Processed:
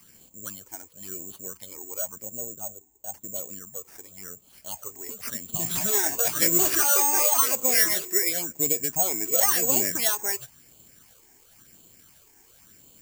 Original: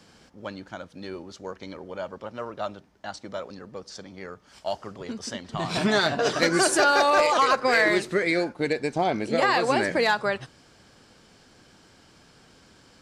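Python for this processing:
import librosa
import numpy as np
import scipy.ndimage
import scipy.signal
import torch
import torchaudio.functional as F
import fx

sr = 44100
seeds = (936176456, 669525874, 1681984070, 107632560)

y = fx.spec_box(x, sr, start_s=2.25, length_s=1.11, low_hz=900.0, high_hz=6300.0, gain_db=-14)
y = fx.phaser_stages(y, sr, stages=8, low_hz=160.0, high_hz=1600.0, hz=0.95, feedback_pct=25)
y = (np.kron(y[::6], np.eye(6)[0]) * 6)[:len(y)]
y = F.gain(torch.from_numpy(y), -5.0).numpy()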